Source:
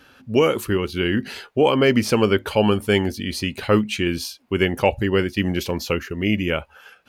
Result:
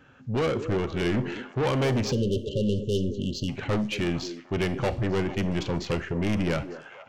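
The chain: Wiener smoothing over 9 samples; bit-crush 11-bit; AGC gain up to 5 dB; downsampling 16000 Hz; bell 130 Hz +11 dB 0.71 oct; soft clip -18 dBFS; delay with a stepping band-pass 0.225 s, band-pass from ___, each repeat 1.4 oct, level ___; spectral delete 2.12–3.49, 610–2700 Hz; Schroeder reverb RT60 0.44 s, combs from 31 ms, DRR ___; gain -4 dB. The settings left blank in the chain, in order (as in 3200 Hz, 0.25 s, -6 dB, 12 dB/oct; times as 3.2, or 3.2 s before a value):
350 Hz, -8 dB, 15.5 dB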